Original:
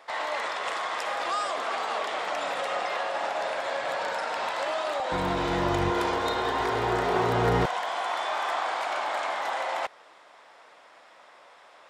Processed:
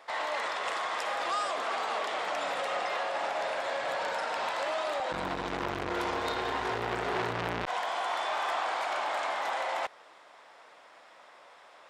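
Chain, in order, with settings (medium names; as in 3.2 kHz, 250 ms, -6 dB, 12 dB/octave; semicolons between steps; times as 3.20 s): transformer saturation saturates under 1.9 kHz; trim -1.5 dB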